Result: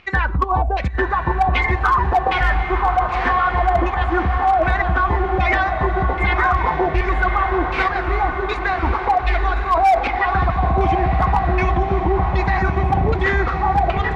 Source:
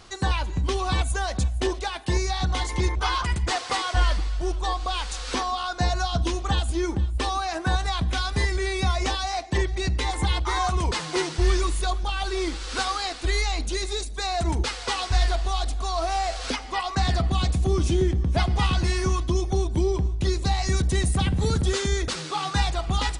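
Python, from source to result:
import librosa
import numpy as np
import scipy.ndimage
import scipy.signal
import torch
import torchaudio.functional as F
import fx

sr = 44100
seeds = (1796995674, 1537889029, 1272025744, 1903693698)

p1 = fx.filter_lfo_lowpass(x, sr, shape='saw_down', hz=0.79, low_hz=600.0, high_hz=2500.0, q=6.4)
p2 = fx.stretch_vocoder(p1, sr, factor=0.61)
p3 = fx.volume_shaper(p2, sr, bpm=137, per_beat=1, depth_db=-11, release_ms=70.0, shape='slow start')
p4 = p3 + fx.echo_diffused(p3, sr, ms=1078, feedback_pct=60, wet_db=-8.0, dry=0)
p5 = np.clip(p4, -10.0 ** (-11.0 / 20.0), 10.0 ** (-11.0 / 20.0))
p6 = fx.over_compress(p5, sr, threshold_db=-22.0, ratio=-1.0)
y = p5 + (p6 * 10.0 ** (-2.5 / 20.0))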